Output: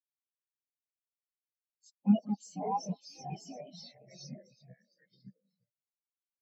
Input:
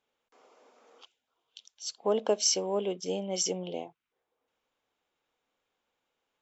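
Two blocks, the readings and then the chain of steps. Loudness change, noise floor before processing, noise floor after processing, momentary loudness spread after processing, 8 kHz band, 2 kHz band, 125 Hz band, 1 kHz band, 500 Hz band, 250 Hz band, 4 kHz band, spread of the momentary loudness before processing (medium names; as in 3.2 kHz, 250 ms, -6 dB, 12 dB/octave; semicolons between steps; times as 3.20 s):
-4.5 dB, -85 dBFS, under -85 dBFS, 22 LU, no reading, under -10 dB, +5.5 dB, +1.5 dB, -14.5 dB, +6.0 dB, -17.5 dB, 14 LU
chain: rattle on loud lows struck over -37 dBFS, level -25 dBFS; ever faster or slower copies 160 ms, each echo -3 st, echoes 2, each echo -6 dB; hum notches 50/100/150 Hz; on a send: echo whose repeats swap between lows and highs 176 ms, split 1.9 kHz, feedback 80%, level -13 dB; on the sum: spectral gate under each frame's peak -10 dB weak; in parallel at -9 dB: sine folder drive 19 dB, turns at -18 dBFS; on the sum: high-pass 68 Hz 6 dB/octave; tone controls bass +6 dB, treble +3 dB; spectral contrast expander 4:1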